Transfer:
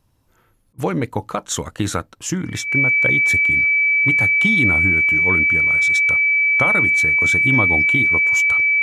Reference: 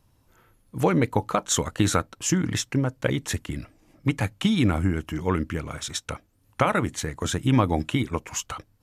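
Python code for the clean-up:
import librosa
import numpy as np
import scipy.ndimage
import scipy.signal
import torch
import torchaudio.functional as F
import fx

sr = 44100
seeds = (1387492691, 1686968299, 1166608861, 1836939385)

y = fx.notch(x, sr, hz=2300.0, q=30.0)
y = fx.fix_interpolate(y, sr, at_s=(0.73,), length_ms=51.0)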